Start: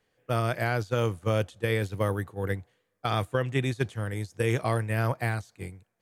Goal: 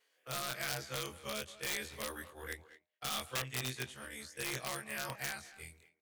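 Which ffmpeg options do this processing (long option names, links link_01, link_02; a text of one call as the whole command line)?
ffmpeg -i in.wav -filter_complex "[0:a]afftfilt=real='re':imag='-im':win_size=2048:overlap=0.75,agate=range=-29dB:threshold=-59dB:ratio=16:detection=peak,tiltshelf=frequency=1100:gain=-7,bandreject=frequency=204.9:width_type=h:width=4,bandreject=frequency=409.8:width_type=h:width=4,bandreject=frequency=614.7:width_type=h:width=4,bandreject=frequency=819.6:width_type=h:width=4,acrossover=split=270[link_01][link_02];[link_02]acompressor=mode=upward:threshold=-41dB:ratio=2.5[link_03];[link_01][link_03]amix=inputs=2:normalize=0,aeval=exprs='(mod(16.8*val(0)+1,2)-1)/16.8':channel_layout=same,asplit=2[link_04][link_05];[link_05]adelay=220,highpass=300,lowpass=3400,asoftclip=type=hard:threshold=-33.5dB,volume=-14dB[link_06];[link_04][link_06]amix=inputs=2:normalize=0,adynamicequalizer=threshold=0.00316:dfrequency=2100:dqfactor=0.7:tfrequency=2100:tqfactor=0.7:attack=5:release=100:ratio=0.375:range=2:mode=boostabove:tftype=highshelf,volume=-6.5dB" out.wav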